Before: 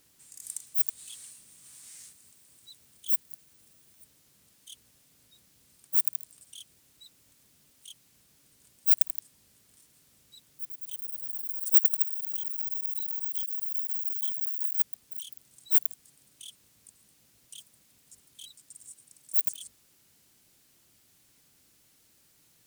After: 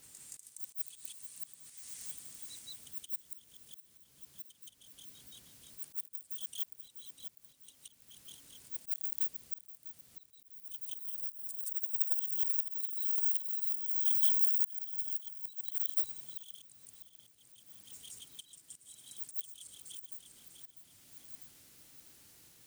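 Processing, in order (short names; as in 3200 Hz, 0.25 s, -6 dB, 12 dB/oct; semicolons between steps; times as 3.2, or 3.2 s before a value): regenerating reverse delay 0.324 s, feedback 61%, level -8 dB; auto swell 0.434 s; reverse echo 0.172 s -5 dB; gain +2 dB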